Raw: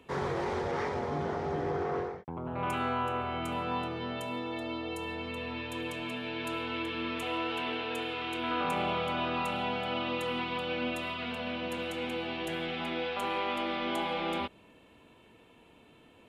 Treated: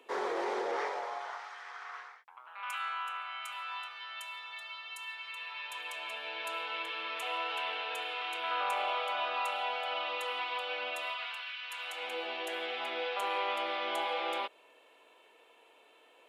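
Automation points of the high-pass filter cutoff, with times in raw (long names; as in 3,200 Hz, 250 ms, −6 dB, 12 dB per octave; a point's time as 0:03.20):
high-pass filter 24 dB per octave
0:00.68 360 Hz
0:01.54 1,200 Hz
0:05.23 1,200 Hz
0:06.25 580 Hz
0:11.07 580 Hz
0:11.56 1,500 Hz
0:12.18 450 Hz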